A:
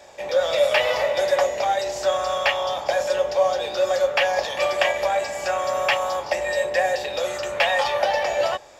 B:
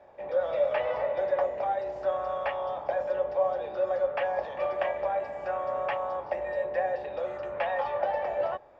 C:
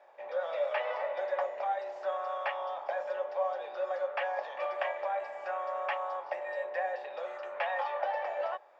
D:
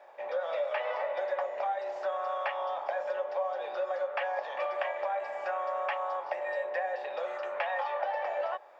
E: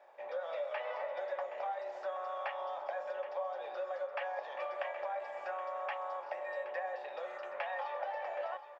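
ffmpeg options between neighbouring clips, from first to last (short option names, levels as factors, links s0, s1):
-af "lowpass=1300,volume=0.473"
-af "highpass=760"
-af "acompressor=threshold=0.0178:ratio=3,volume=1.78"
-af "aecho=1:1:772:0.224,volume=0.473"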